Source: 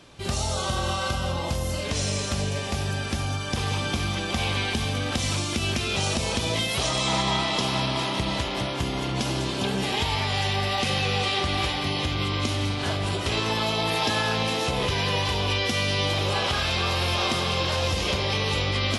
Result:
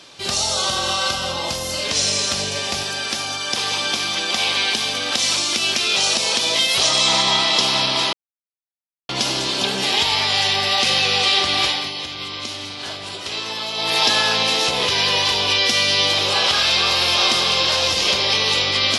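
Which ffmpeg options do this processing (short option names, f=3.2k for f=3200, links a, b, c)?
-filter_complex "[0:a]asettb=1/sr,asplit=3[a][b][c];[a]atrim=end=2.834[d];[b]atrim=start=2.83:end=6.76,asetpts=PTS-STARTPTS,afade=t=in:d=0.004:c=qsin,afade=t=out:st=3.926:d=0.004:c=qsin,highpass=f=250:p=1[e];[c]atrim=start=6.756[f];[d][e]acrossfade=d=0.004:c1=hsin:c2=qsin[g];[g][f]acrossfade=d=0.004:c1=qsin:c2=hsin,asplit=5[h][i][j][k][l];[h]atrim=end=8.13,asetpts=PTS-STARTPTS,afade=t=out:st=8.126:d=0.004:c=hsin[m];[i]atrim=start=8.13:end=9.09,asetpts=PTS-STARTPTS,volume=0[n];[j]atrim=start=9.09:end=11.92,asetpts=PTS-STARTPTS,afade=t=in:d=0.004:c=hsin,afade=t=out:st=2.57:d=0.26:silence=0.375837[o];[k]atrim=start=11.92:end=13.73,asetpts=PTS-STARTPTS,volume=-8.5dB[p];[l]atrim=start=13.73,asetpts=PTS-STARTPTS,afade=t=in:d=0.26:silence=0.375837[q];[m][n][o][p][q]concat=n=5:v=0:a=1,acontrast=65,highpass=f=430:p=1,equalizer=f=4.7k:w=1:g=8,volume=-1dB"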